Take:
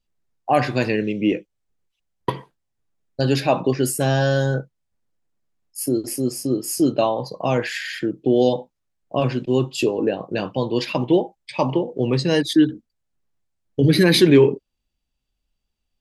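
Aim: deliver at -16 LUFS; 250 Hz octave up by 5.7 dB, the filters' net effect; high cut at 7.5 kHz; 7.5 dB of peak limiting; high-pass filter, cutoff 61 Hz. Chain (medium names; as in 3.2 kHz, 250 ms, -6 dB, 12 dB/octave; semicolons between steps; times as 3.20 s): high-pass 61 Hz; low-pass 7.5 kHz; peaking EQ 250 Hz +7.5 dB; trim +2.5 dB; peak limiter -3.5 dBFS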